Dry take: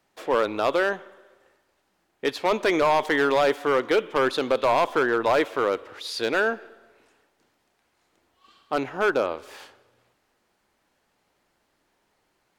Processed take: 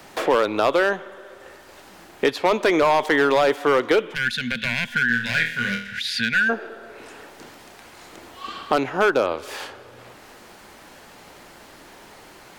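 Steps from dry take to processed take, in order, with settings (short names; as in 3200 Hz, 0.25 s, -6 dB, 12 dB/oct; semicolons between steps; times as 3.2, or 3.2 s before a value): 4.14–6.49 spectral gain 240–1400 Hz -30 dB; 5.07–5.99 flutter echo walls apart 4.3 m, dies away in 0.37 s; three-band squash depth 70%; gain +4 dB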